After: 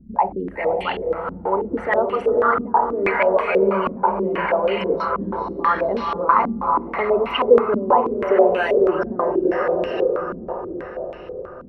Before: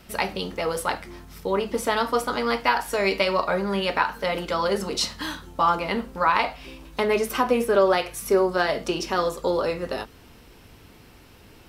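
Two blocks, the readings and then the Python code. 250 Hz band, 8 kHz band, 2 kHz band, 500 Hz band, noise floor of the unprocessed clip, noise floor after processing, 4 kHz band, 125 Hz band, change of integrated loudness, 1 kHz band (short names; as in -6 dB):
+4.0 dB, under -25 dB, +1.0 dB, +6.0 dB, -50 dBFS, -36 dBFS, -5.5 dB, +1.0 dB, +4.5 dB, +5.0 dB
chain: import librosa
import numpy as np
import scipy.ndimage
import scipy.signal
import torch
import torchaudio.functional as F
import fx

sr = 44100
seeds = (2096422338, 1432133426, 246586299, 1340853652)

y = fx.envelope_sharpen(x, sr, power=2.0)
y = fx.echo_diffused(y, sr, ms=502, feedback_pct=55, wet_db=-3.0)
y = fx.filter_held_lowpass(y, sr, hz=6.2, low_hz=230.0, high_hz=2700.0)
y = F.gain(torch.from_numpy(y), -1.0).numpy()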